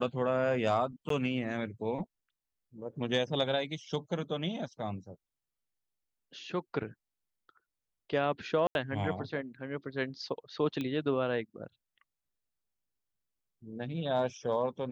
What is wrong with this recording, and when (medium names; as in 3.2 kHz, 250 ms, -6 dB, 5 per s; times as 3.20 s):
1.09–1.10 s: dropout 13 ms
8.67–8.75 s: dropout 81 ms
10.81 s: pop -23 dBFS